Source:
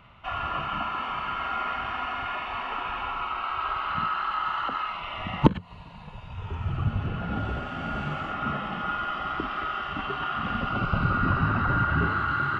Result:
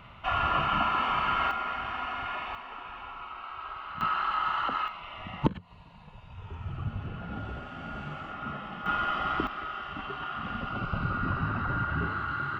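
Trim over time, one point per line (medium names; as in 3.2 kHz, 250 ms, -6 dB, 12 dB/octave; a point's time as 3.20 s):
+3.5 dB
from 1.51 s -3 dB
from 2.55 s -10.5 dB
from 4.01 s -0.5 dB
from 4.88 s -7.5 dB
from 8.86 s +1 dB
from 9.47 s -6 dB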